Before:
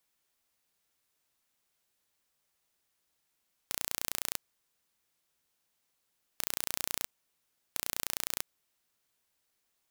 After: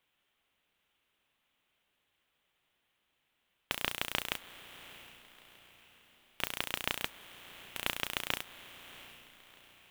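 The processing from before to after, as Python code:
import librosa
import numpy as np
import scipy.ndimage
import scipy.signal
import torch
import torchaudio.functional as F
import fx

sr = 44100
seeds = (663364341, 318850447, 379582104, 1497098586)

p1 = fx.sample_hold(x, sr, seeds[0], rate_hz=13000.0, jitter_pct=0)
p2 = x + (p1 * 10.0 ** (-5.0 / 20.0))
p3 = fx.high_shelf_res(p2, sr, hz=4000.0, db=-8.0, q=3.0)
p4 = fx.mod_noise(p3, sr, seeds[1], snr_db=11)
p5 = fx.echo_diffused(p4, sr, ms=711, feedback_pct=45, wet_db=-15)
y = p5 * 10.0 ** (-1.0 / 20.0)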